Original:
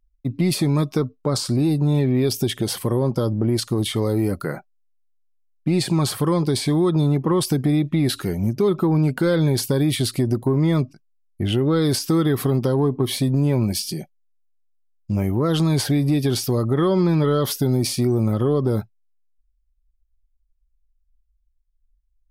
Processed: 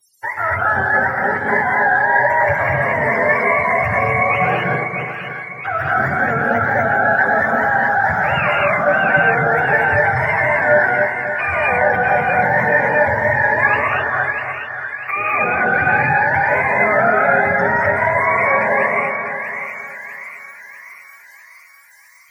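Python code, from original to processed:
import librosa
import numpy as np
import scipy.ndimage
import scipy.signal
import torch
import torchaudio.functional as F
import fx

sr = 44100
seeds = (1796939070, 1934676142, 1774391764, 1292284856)

p1 = fx.octave_mirror(x, sr, pivot_hz=490.0)
p2 = fx.low_shelf(p1, sr, hz=290.0, db=-9.0)
p3 = fx.over_compress(p2, sr, threshold_db=-34.0, ratio=-1.0)
p4 = p2 + (p3 * librosa.db_to_amplitude(2.0))
p5 = fx.echo_split(p4, sr, split_hz=1300.0, low_ms=280, high_ms=647, feedback_pct=52, wet_db=-6.0)
y = fx.rev_gated(p5, sr, seeds[0], gate_ms=270, shape='rising', drr_db=-3.0)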